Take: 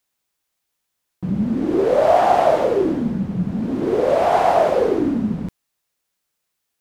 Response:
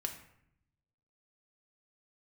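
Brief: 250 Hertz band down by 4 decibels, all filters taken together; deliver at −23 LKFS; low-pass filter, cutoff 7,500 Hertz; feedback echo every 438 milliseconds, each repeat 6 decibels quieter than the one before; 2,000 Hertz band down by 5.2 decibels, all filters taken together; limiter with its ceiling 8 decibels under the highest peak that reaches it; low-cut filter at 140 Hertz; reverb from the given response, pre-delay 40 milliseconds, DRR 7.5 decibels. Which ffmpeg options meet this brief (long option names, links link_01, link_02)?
-filter_complex "[0:a]highpass=140,lowpass=7500,equalizer=frequency=250:width_type=o:gain=-4.5,equalizer=frequency=2000:width_type=o:gain=-7,alimiter=limit=-11.5dB:level=0:latency=1,aecho=1:1:438|876|1314|1752|2190|2628:0.501|0.251|0.125|0.0626|0.0313|0.0157,asplit=2[link_01][link_02];[1:a]atrim=start_sample=2205,adelay=40[link_03];[link_02][link_03]afir=irnorm=-1:irlink=0,volume=-7.5dB[link_04];[link_01][link_04]amix=inputs=2:normalize=0,volume=-2.5dB"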